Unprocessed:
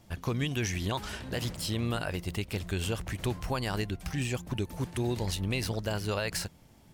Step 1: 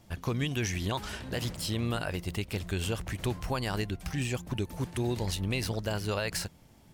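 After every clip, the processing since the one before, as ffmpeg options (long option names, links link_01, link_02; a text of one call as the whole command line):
ffmpeg -i in.wav -af anull out.wav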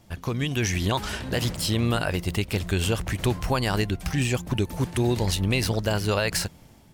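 ffmpeg -i in.wav -af "dynaudnorm=framelen=370:gausssize=3:maxgain=5dB,volume=2.5dB" out.wav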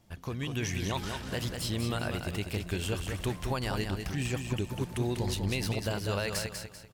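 ffmpeg -i in.wav -af "aecho=1:1:195|390|585|780:0.501|0.17|0.0579|0.0197,volume=-8.5dB" out.wav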